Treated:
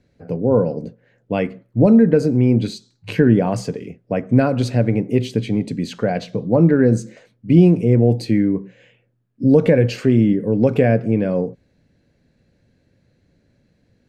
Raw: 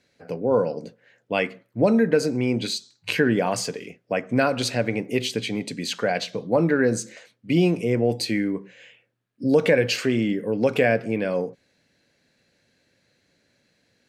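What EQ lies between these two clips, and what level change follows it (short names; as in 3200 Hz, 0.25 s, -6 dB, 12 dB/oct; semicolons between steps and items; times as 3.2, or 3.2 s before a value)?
tilt -4.5 dB/oct; high shelf 5500 Hz +10.5 dB; -1.0 dB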